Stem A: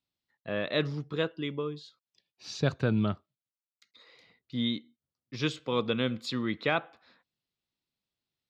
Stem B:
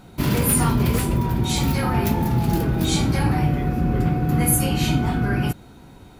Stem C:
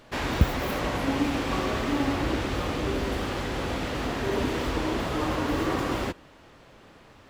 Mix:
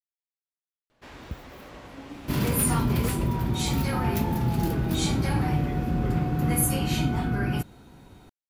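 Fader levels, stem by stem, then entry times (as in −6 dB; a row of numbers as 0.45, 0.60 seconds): muted, −5.0 dB, −16.0 dB; muted, 2.10 s, 0.90 s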